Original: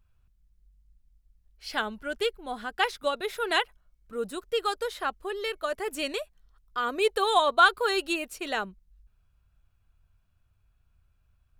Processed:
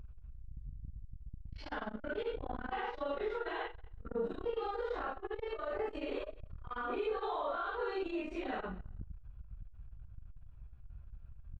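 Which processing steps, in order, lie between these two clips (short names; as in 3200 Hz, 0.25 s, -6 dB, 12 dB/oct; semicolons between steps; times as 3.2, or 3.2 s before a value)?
phase scrambler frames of 0.2 s; low shelf 77 Hz +11 dB; compressor 2.5:1, threshold -45 dBFS, peak gain reduction 20 dB; limiter -35.5 dBFS, peak gain reduction 8.5 dB; tape spacing loss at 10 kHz 41 dB; feedback echo 0.186 s, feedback 18%, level -18.5 dB; core saturation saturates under 190 Hz; gain +11.5 dB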